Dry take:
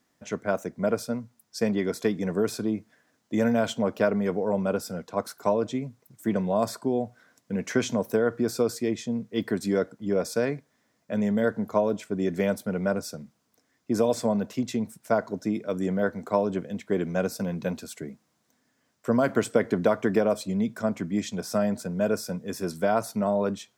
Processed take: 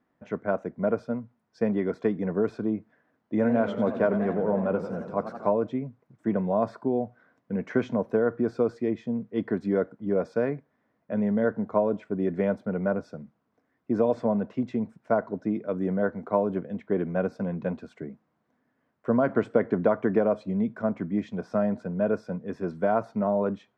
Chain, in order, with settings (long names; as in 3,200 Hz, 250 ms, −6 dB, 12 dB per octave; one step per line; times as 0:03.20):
low-pass filter 1,600 Hz 12 dB per octave
parametric band 99 Hz −2 dB
0:03.34–0:05.51: feedback echo with a swinging delay time 88 ms, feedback 76%, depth 186 cents, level −11 dB